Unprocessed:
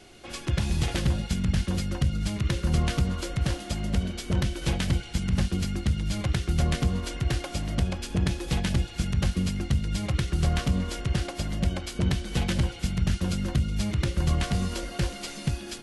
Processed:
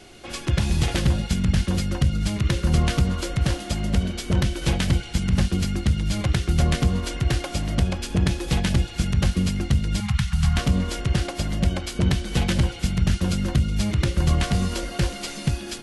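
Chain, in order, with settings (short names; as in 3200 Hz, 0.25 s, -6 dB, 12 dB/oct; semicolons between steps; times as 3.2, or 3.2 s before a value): 10–10.57 Chebyshev band-stop 210–790 Hz, order 4; gain +4.5 dB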